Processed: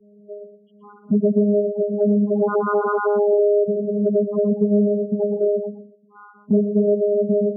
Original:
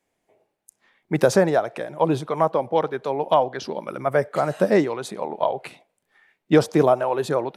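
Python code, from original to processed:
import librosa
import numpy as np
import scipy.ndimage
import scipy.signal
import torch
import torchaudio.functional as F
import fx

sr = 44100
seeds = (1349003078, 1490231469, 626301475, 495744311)

p1 = fx.high_shelf(x, sr, hz=4200.0, db=-8.0)
p2 = fx.notch(p1, sr, hz=2300.0, q=28.0)
p3 = fx.over_compress(p2, sr, threshold_db=-26.0, ratio=-1.0)
p4 = p2 + (p3 * 10.0 ** (-3.0 / 20.0))
p5 = fx.spec_paint(p4, sr, seeds[0], shape='fall', start_s=2.32, length_s=1.32, low_hz=500.0, high_hz=3400.0, level_db=-16.0)
p6 = fx.vocoder(p5, sr, bands=4, carrier='saw', carrier_hz=206.0)
p7 = np.clip(p6, -10.0 ** (-10.0 / 20.0), 10.0 ** (-10.0 / 20.0))
p8 = fx.spec_topn(p7, sr, count=4)
p9 = p8 + fx.echo_single(p8, sr, ms=117, db=-10.5, dry=0)
p10 = fx.band_squash(p9, sr, depth_pct=70)
y = p10 * 10.0 ** (1.5 / 20.0)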